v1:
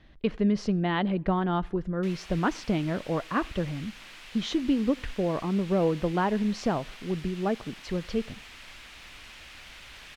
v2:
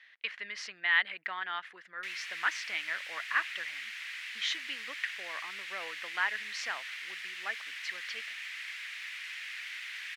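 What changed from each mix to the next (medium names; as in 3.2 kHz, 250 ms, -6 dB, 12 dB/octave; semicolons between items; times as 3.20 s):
speech: send off; master: add resonant high-pass 1.9 kHz, resonance Q 3.5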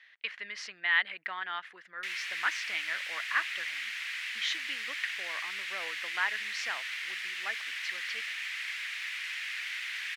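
background +4.5 dB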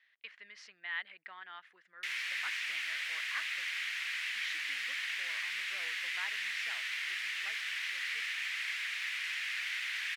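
speech -12.0 dB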